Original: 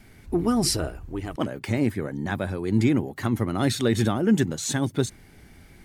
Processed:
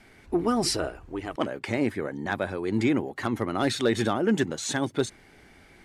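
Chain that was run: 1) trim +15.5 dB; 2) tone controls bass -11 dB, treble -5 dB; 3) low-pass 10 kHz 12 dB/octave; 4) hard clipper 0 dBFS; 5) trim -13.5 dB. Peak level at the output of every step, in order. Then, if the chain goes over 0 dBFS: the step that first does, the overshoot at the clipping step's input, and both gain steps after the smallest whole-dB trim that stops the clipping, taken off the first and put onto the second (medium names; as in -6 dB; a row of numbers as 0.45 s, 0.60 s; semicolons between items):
+6.0 dBFS, +3.5 dBFS, +3.5 dBFS, 0.0 dBFS, -13.5 dBFS; step 1, 3.5 dB; step 1 +11.5 dB, step 5 -9.5 dB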